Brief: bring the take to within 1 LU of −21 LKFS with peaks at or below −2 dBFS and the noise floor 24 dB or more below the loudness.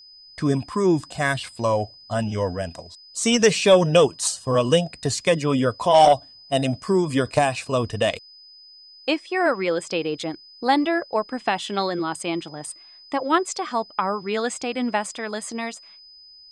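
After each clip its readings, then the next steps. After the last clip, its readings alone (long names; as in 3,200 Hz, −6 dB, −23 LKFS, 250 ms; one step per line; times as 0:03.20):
interfering tone 5,000 Hz; level of the tone −45 dBFS; integrated loudness −22.5 LKFS; sample peak −5.0 dBFS; target loudness −21.0 LKFS
→ notch filter 5,000 Hz, Q 30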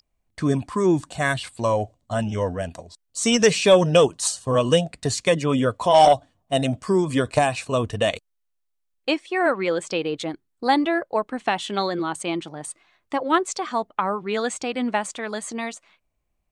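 interfering tone none found; integrated loudness −22.5 LKFS; sample peak −5.0 dBFS; target loudness −21.0 LKFS
→ level +1.5 dB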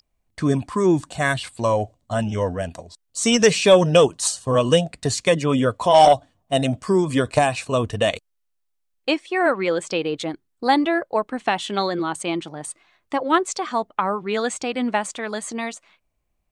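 integrated loudness −21.0 LKFS; sample peak −3.5 dBFS; background noise floor −73 dBFS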